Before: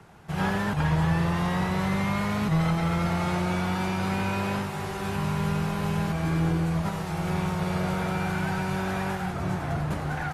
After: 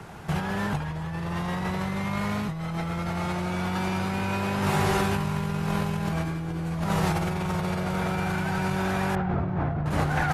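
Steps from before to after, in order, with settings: negative-ratio compressor -32 dBFS, ratio -1; 9.15–9.86 tape spacing loss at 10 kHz 44 dB; gain +4.5 dB

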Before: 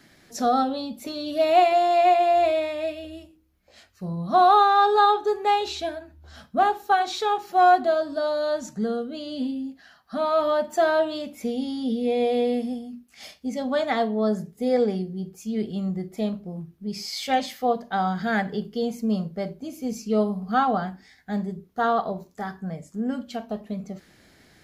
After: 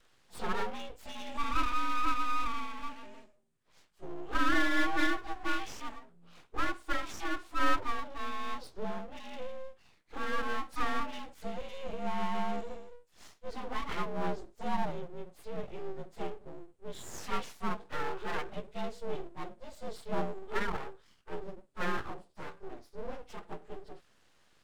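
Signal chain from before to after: inharmonic rescaling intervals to 89%; full-wave rectifier; gain -7 dB

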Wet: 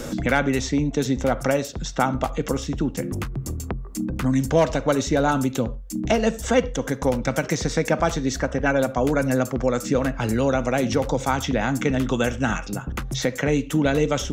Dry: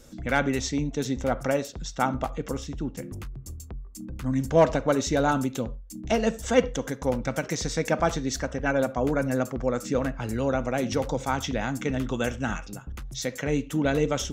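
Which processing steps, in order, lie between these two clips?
three-band squash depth 70%; gain +4 dB

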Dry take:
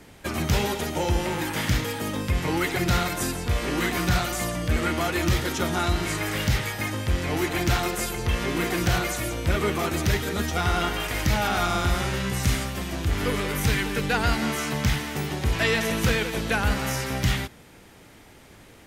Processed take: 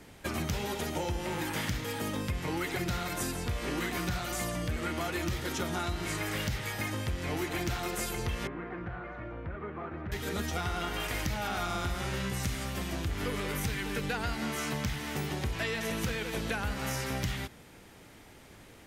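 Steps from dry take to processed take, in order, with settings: compressor, threshold -26 dBFS, peak gain reduction 9 dB; 8.47–10.12 ladder low-pass 2000 Hz, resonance 25%; gain -3.5 dB

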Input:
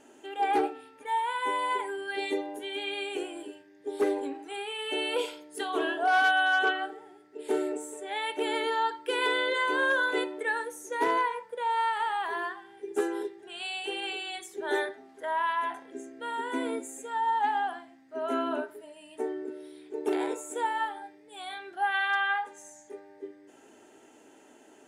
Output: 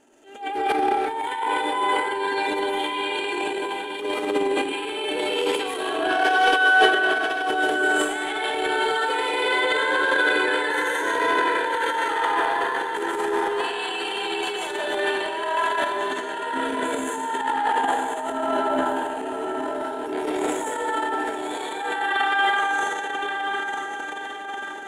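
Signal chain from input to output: diffused feedback echo 1.021 s, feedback 51%, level -6 dB; digital reverb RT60 1.7 s, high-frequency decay 0.95×, pre-delay 0.1 s, DRR -7.5 dB; transient shaper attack -11 dB, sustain +11 dB; gain -2 dB

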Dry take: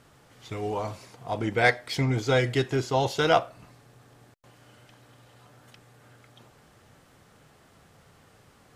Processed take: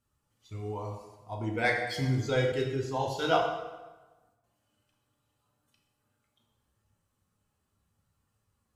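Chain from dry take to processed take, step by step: per-bin expansion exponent 1.5; plate-style reverb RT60 1.2 s, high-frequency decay 0.75×, DRR 0 dB; 2.52–3.42 three-band expander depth 40%; gain -5.5 dB

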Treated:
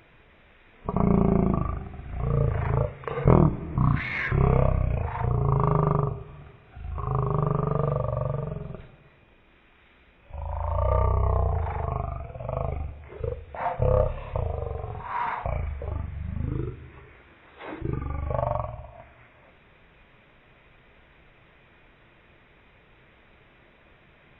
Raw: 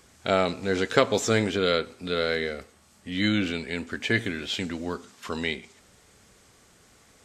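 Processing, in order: one diode to ground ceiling -15.5 dBFS; wide varispeed 0.297×; gain +1.5 dB

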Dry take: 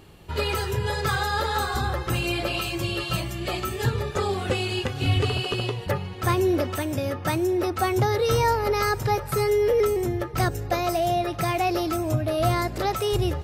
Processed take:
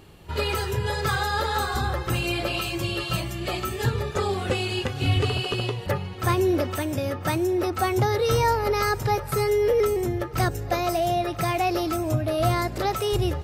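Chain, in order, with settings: pre-echo 42 ms -23 dB

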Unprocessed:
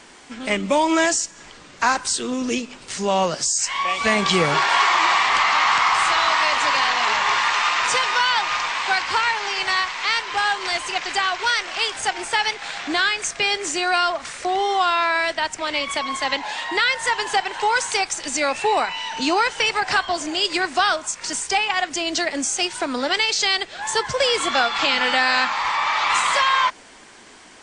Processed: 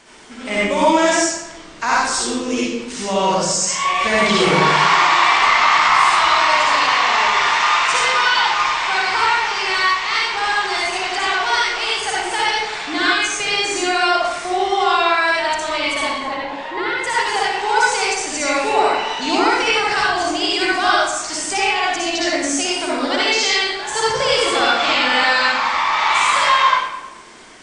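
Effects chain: 16.12–17.04 LPF 1000 Hz 6 dB/oct; reverb RT60 1.0 s, pre-delay 53 ms, DRR -6.5 dB; gain -3.5 dB

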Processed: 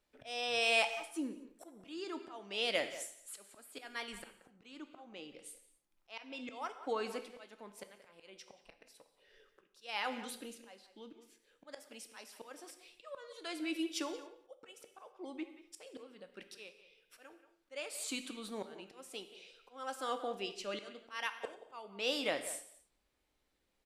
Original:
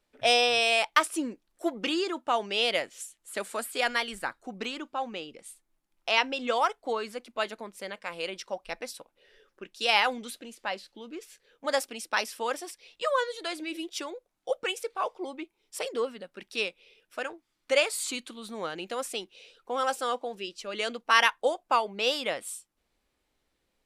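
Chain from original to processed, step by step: dynamic EQ 280 Hz, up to +6 dB, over -50 dBFS, Q 3.5; auto swell 0.586 s; speakerphone echo 0.18 s, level -13 dB; non-linear reverb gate 0.3 s falling, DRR 9 dB; gain -4.5 dB

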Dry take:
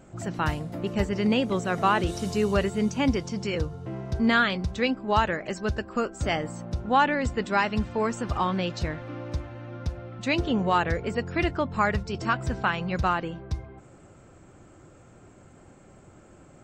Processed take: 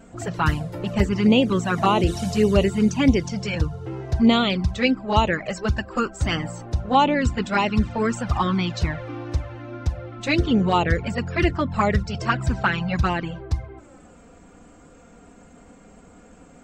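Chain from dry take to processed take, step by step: envelope flanger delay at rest 4.6 ms, full sweep at -18.5 dBFS; gain +7.5 dB

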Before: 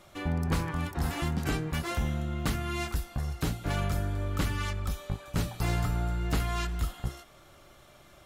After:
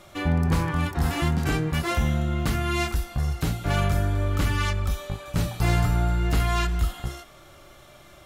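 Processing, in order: harmonic-percussive split percussive -7 dB; gain +8 dB

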